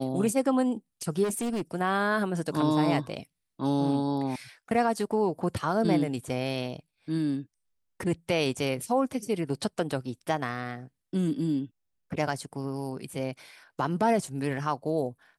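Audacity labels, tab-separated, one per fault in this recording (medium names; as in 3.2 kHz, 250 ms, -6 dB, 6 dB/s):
1.230000	1.620000	clipped -26.5 dBFS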